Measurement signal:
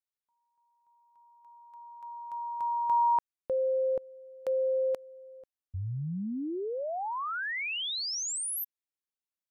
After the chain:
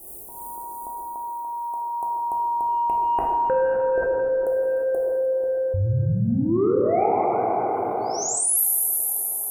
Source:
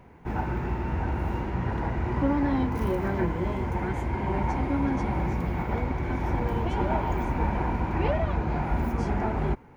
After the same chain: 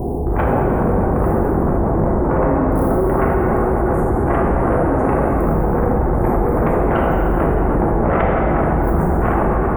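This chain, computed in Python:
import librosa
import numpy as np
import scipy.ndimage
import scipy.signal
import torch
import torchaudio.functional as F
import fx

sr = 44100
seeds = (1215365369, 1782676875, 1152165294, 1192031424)

y = scipy.signal.sosfilt(scipy.signal.cheby2(4, 70, [1900.0, 4100.0], 'bandstop', fs=sr, output='sos'), x)
y = fx.peak_eq(y, sr, hz=83.0, db=-3.0, octaves=0.94)
y = y + 0.47 * np.pad(y, (int(2.7 * sr / 1000.0), 0))[:len(y)]
y = fx.dynamic_eq(y, sr, hz=240.0, q=1.4, threshold_db=-43.0, ratio=4.0, max_db=-4)
y = fx.rider(y, sr, range_db=4, speed_s=2.0)
y = fx.tremolo_shape(y, sr, shape='triangle', hz=2.6, depth_pct=65)
y = fx.cheby_harmonics(y, sr, harmonics=(6, 7), levels_db=(-42, -6), full_scale_db=-16.0)
y = y + 10.0 ** (-17.0 / 20.0) * np.pad(y, (int(304 * sr / 1000.0), 0))[:len(y)]
y = fx.rev_plate(y, sr, seeds[0], rt60_s=3.0, hf_ratio=0.65, predelay_ms=0, drr_db=-3.5)
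y = fx.env_flatten(y, sr, amount_pct=70)
y = y * librosa.db_to_amplitude(4.0)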